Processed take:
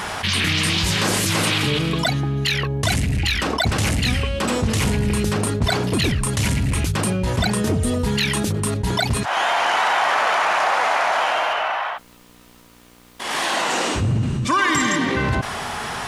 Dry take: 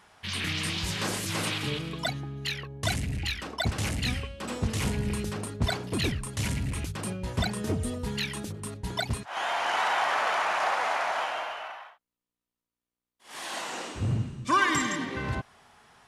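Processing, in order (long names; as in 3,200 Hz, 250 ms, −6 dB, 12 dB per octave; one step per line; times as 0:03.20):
0:11.53–0:13.70: high-shelf EQ 5,300 Hz −7 dB
envelope flattener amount 70%
level +3.5 dB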